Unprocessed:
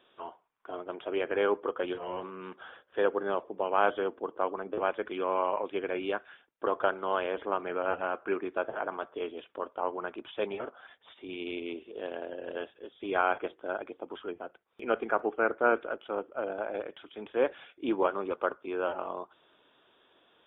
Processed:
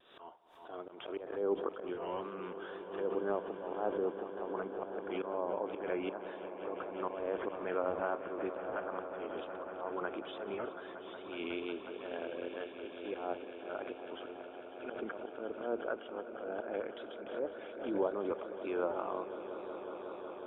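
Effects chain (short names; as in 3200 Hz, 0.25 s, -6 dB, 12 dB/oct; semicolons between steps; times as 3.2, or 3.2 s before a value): treble ducked by the level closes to 580 Hz, closed at -24.5 dBFS; auto swell 0.175 s; wow and flutter 53 cents; swelling echo 0.183 s, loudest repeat 5, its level -14.5 dB; backwards sustainer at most 80 dB/s; gain -2.5 dB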